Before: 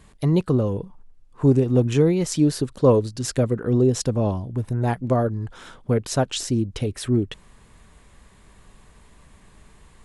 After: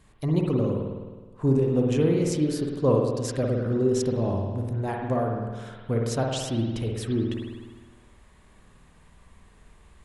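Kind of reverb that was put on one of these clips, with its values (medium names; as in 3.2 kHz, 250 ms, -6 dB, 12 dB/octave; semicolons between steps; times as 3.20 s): spring tank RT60 1.4 s, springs 52 ms, chirp 55 ms, DRR 0 dB; trim -6.5 dB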